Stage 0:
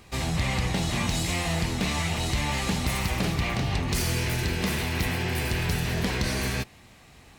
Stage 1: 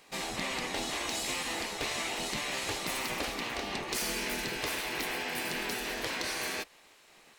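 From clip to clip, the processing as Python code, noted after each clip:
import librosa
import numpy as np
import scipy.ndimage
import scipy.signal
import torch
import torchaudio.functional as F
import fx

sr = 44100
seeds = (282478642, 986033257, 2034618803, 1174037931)

y = fx.spec_gate(x, sr, threshold_db=-10, keep='weak')
y = F.gain(torch.from_numpy(y), -3.0).numpy()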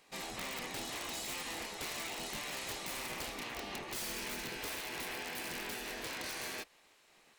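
y = (np.mod(10.0 ** (26.5 / 20.0) * x + 1.0, 2.0) - 1.0) / 10.0 ** (26.5 / 20.0)
y = F.gain(torch.from_numpy(y), -6.5).numpy()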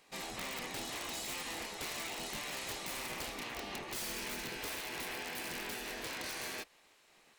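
y = x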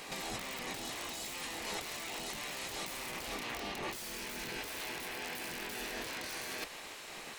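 y = fx.over_compress(x, sr, threshold_db=-51.0, ratio=-1.0)
y = F.gain(torch.from_numpy(y), 9.5).numpy()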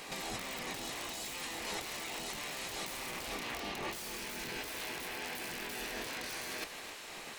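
y = x + 10.0 ** (-12.0 / 20.0) * np.pad(x, (int(260 * sr / 1000.0), 0))[:len(x)]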